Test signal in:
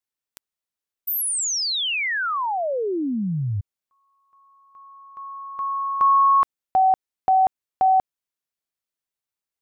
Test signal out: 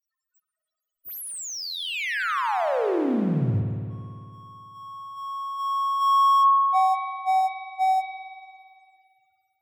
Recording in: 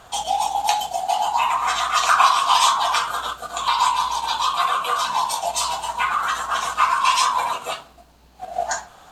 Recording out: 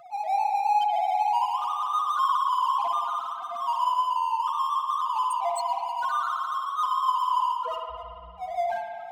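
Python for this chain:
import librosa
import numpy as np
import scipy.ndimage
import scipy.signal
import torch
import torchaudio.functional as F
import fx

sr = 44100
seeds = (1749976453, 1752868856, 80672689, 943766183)

y = fx.spec_topn(x, sr, count=1)
y = fx.power_curve(y, sr, exponent=0.7)
y = fx.rev_spring(y, sr, rt60_s=2.2, pass_ms=(56,), chirp_ms=45, drr_db=2.0)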